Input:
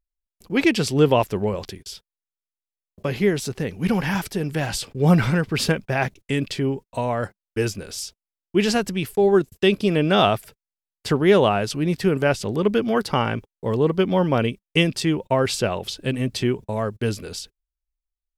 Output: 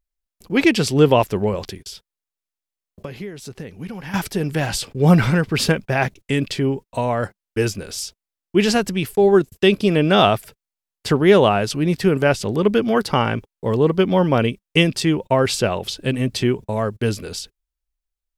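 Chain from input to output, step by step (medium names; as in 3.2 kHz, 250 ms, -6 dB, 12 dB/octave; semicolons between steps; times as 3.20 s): 1.85–4.14 s: compression 5:1, threshold -34 dBFS, peak gain reduction 18 dB; trim +3 dB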